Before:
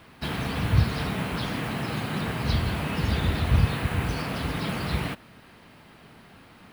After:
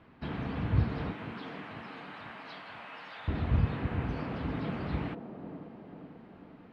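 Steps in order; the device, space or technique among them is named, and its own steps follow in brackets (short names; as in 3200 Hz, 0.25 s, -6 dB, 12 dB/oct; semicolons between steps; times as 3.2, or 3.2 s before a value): 1.12–3.28 Bessel high-pass 1000 Hz, order 8; phone in a pocket (LPF 3600 Hz 12 dB/oct; bell 270 Hz +3.5 dB 0.86 oct; high shelf 2400 Hz -9.5 dB); band-limited delay 0.492 s, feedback 56%, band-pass 410 Hz, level -6 dB; gain -6.5 dB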